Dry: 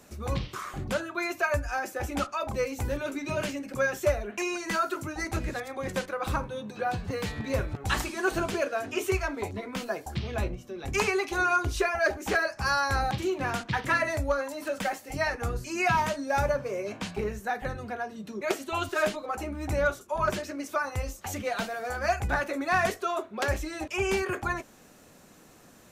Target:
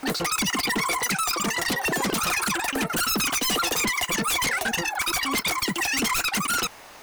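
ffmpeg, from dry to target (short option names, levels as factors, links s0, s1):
-af "aeval=exprs='0.168*sin(PI/2*3.55*val(0)/0.168)':c=same,asetrate=162729,aresample=44100,volume=0.562"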